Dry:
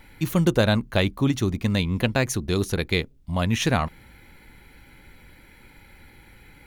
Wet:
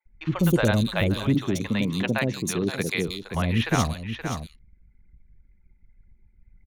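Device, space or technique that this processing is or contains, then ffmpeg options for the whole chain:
ducked delay: -filter_complex "[0:a]asettb=1/sr,asplit=3[a][b][c];[a]atrim=end=1.284[d];[b]atrim=start=1.28:end=3.02,asetpts=PTS-STARTPTS,afade=t=in:d=0.004:c=qsin,afade=t=out:st=1.736:d=0.004:c=qsin,highpass=f=130:w=0.5412,highpass=f=130:w=1.3066[e];[c]atrim=start=3.016[f];[d][e]acrossfade=d=0.004:c1=hsin:c2=qsin[g];[g][f]acrossfade=d=0.004:c1=qsin:c2=hsin,anlmdn=0.631,asplit=3[h][i][j];[i]adelay=524,volume=-7.5dB[k];[j]apad=whole_len=316913[l];[k][l]sidechaincompress=threshold=-24dB:ratio=16:attack=12:release=426[m];[h][m]amix=inputs=2:normalize=0,acrossover=split=580|3600[n][o][p];[n]adelay=60[q];[p]adelay=180[r];[q][o][r]amix=inputs=3:normalize=0"

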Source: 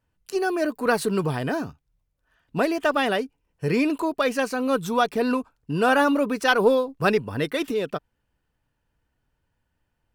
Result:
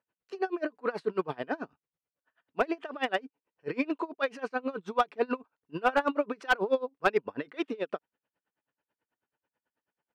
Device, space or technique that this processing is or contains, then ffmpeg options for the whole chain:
helicopter radio: -af "highpass=310,lowpass=2.8k,aeval=exprs='val(0)*pow(10,-27*(0.5-0.5*cos(2*PI*9.2*n/s))/20)':c=same,asoftclip=type=hard:threshold=-15dB"

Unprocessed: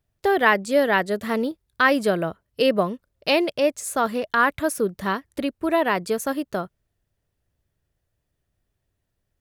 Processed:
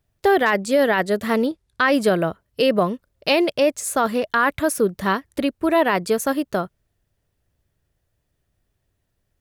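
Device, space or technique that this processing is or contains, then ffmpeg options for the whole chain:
clipper into limiter: -filter_complex "[0:a]asoftclip=type=hard:threshold=-6dB,alimiter=limit=-12.5dB:level=0:latency=1:release=23,asettb=1/sr,asplit=3[a][b][c];[a]atrim=end=1.464[d];[b]atrim=start=1.46:end=1.93,asetpts=PTS-STARTPTS,afade=t=in:d=0.004:c=qsin,afade=t=out:st=0.466:d=0.004:c=qsin,lowpass=10k[e];[c]atrim=start=1.926[f];[d][e]acrossfade=d=0.004:c1=hsin:c2=qsin[g];[g][f]acrossfade=d=0.004:c1=qsin:c2=hsin,volume=4dB"

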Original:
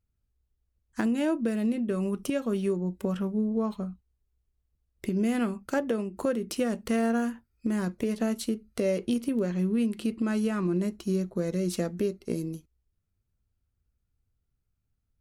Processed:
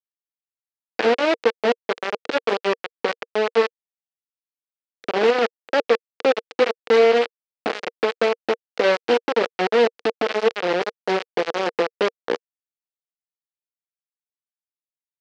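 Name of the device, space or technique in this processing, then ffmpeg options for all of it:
hand-held game console: -af "acrusher=bits=3:mix=0:aa=0.000001,highpass=410,equalizer=f=470:t=q:w=4:g=10,equalizer=f=1k:t=q:w=4:g=-4,equalizer=f=3.6k:t=q:w=4:g=-3,lowpass=f=4.3k:w=0.5412,lowpass=f=4.3k:w=1.3066,volume=6.5dB"

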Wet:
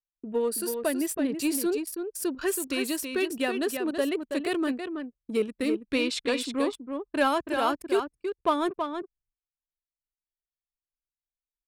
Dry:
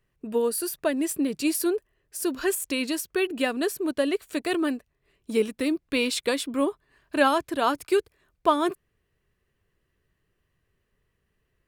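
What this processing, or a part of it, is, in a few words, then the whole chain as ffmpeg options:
parallel distortion: -filter_complex "[0:a]asplit=2[a][b];[b]asoftclip=type=hard:threshold=-21dB,volume=-6.5dB[c];[a][c]amix=inputs=2:normalize=0,agate=range=-33dB:threshold=-55dB:ratio=3:detection=peak,asettb=1/sr,asplit=3[d][e][f];[d]atrim=end=5.804[g];[e]atrim=start=5.8:end=6.41,asetpts=PTS-STARTPTS,afade=t=in:d=0.004:c=qsin,afade=t=out:st=0.606:d=0.004:c=qsin,lowpass=7.1k[h];[f]atrim=start=6.406[i];[g][h]acrossfade=d=0.004:c1=hsin:c2=qsin[j];[j][i]acrossfade=d=0.004:c1=qsin:c2=hsin,aecho=1:1:326:0.473,anlmdn=10,volume=-5.5dB"

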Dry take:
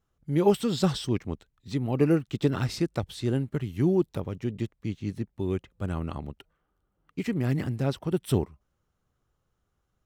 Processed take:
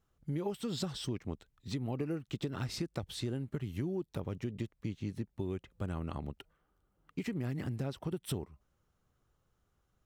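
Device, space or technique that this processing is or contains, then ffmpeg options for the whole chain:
serial compression, peaks first: -af "acompressor=threshold=-29dB:ratio=6,acompressor=threshold=-39dB:ratio=1.5"

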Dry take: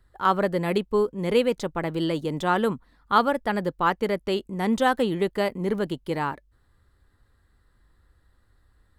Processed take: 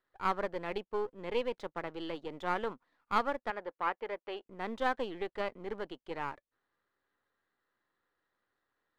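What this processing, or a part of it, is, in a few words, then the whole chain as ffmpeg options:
crystal radio: -filter_complex "[0:a]highpass=390,lowpass=3.3k,aeval=exprs='if(lt(val(0),0),0.447*val(0),val(0))':c=same,asettb=1/sr,asplit=3[a][b][c];[a]atrim=end=3.504[d];[b]atrim=start=3.5:end=4.46,asetpts=PTS-STARTPTS,afade=t=in:d=0.004:c=qsin,afade=t=out:st=0.956:d=0.004:c=qsin,bass=f=250:g=-14,treble=f=4k:g=-12[e];[c]atrim=start=4.456[f];[d][e]acrossfade=d=0.004:c1=hsin:c2=qsin[g];[g][f]acrossfade=d=0.004:c1=qsin:c2=hsin,volume=-7.5dB"

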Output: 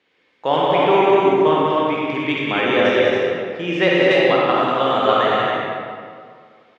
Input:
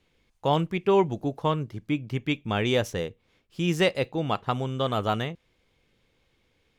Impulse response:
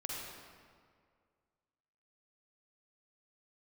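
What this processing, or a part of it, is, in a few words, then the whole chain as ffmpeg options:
station announcement: -filter_complex "[0:a]highpass=320,lowpass=4.1k,equalizer=f=1.8k:t=o:w=0.41:g=5.5,aecho=1:1:189.5|277:0.631|0.631[a];[1:a]atrim=start_sample=2205[b];[a][b]afir=irnorm=-1:irlink=0,asettb=1/sr,asplit=3[c][d][e];[c]atrim=end=2.654[f];[d]atrim=start=2.65:end=4.11,asetpts=PTS-STARTPTS,afade=t=in:d=0.004:c=qsin,afade=t=out:st=1.456:d=0.004:c=qsin,aemphasis=mode=reproduction:type=50kf[g];[e]atrim=start=4.106[h];[f][g]acrossfade=d=0.004:c1=hsin:c2=qsin[i];[i][h]acrossfade=d=0.004:c1=qsin:c2=hsin,volume=8.5dB"

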